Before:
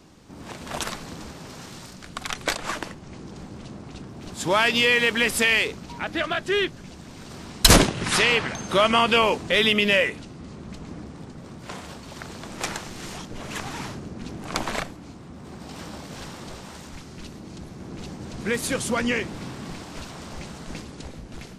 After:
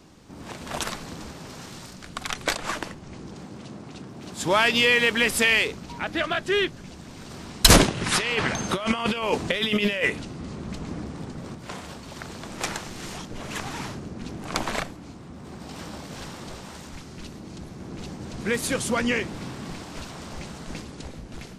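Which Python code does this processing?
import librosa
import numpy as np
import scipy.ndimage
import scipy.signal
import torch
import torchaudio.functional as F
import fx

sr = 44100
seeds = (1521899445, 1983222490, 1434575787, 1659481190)

y = fx.highpass(x, sr, hz=110.0, slope=12, at=(3.35, 4.38))
y = fx.over_compress(y, sr, threshold_db=-23.0, ratio=-0.5, at=(8.17, 11.55))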